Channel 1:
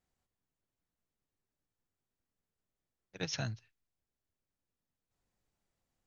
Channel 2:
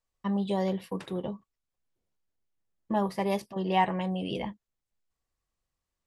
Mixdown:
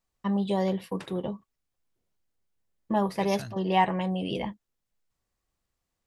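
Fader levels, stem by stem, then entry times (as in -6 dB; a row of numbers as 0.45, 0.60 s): -3.0, +2.0 dB; 0.00, 0.00 s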